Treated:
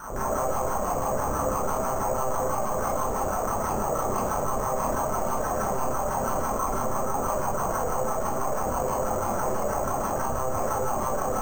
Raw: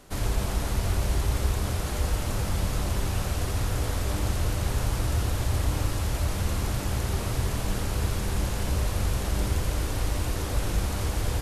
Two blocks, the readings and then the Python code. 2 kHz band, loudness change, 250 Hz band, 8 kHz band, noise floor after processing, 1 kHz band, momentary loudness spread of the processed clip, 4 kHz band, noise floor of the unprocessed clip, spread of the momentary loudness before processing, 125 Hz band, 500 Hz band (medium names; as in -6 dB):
-1.5 dB, +1.0 dB, +0.5 dB, +1.5 dB, -28 dBFS, +12.0 dB, 1 LU, -13.5 dB, -31 dBFS, 2 LU, -9.5 dB, +9.0 dB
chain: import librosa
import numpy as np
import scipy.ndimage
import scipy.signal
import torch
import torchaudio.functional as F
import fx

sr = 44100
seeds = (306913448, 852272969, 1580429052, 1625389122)

y = fx.octave_divider(x, sr, octaves=1, level_db=0.0)
y = fx.band_shelf(y, sr, hz=810.0, db=10.0, octaves=1.7)
y = fx.notch(y, sr, hz=520.0, q=12.0)
y = fx.filter_lfo_bandpass(y, sr, shape='saw_down', hz=6.1, low_hz=290.0, high_hz=1500.0, q=4.1)
y = 10.0 ** (-26.0 / 20.0) * np.tanh(y / 10.0 ** (-26.0 / 20.0))
y = fx.lpc_monotone(y, sr, seeds[0], pitch_hz=130.0, order=8)
y = fx.rev_schroeder(y, sr, rt60_s=0.43, comb_ms=29, drr_db=-8.0)
y = np.repeat(scipy.signal.resample_poly(y, 1, 6), 6)[:len(y)]
y = fx.env_flatten(y, sr, amount_pct=50)